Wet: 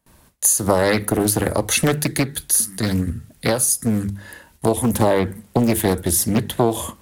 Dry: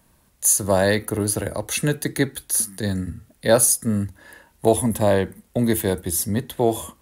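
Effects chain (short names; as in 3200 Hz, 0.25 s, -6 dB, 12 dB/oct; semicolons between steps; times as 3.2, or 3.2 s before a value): notches 50/100/150/200 Hz; compressor 12:1, threshold -20 dBFS, peak gain reduction 11 dB; 2.03–4.68 bell 720 Hz -4.5 dB 2.9 oct; gate with hold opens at -49 dBFS; Doppler distortion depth 0.72 ms; gain +8 dB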